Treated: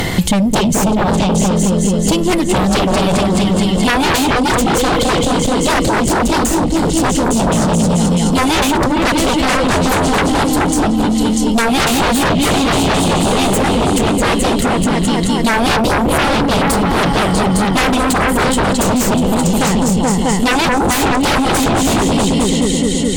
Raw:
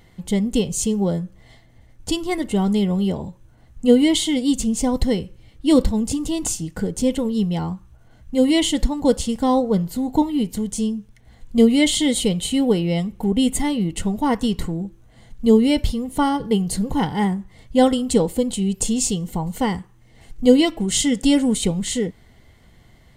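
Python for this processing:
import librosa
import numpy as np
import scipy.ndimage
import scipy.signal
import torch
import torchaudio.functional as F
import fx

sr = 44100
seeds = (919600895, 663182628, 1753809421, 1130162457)

y = fx.echo_opening(x, sr, ms=214, hz=400, octaves=2, feedback_pct=70, wet_db=0)
y = fx.fold_sine(y, sr, drive_db=17, ceiling_db=-0.5)
y = fx.band_squash(y, sr, depth_pct=100)
y = y * librosa.db_to_amplitude(-10.0)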